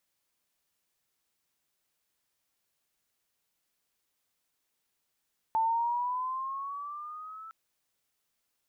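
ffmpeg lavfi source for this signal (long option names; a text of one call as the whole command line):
ffmpeg -f lavfi -i "aevalsrc='pow(10,(-23.5-19*t/1.96)/20)*sin(2*PI*885*1.96/(7*log(2)/12)*(exp(7*log(2)/12*t/1.96)-1))':duration=1.96:sample_rate=44100" out.wav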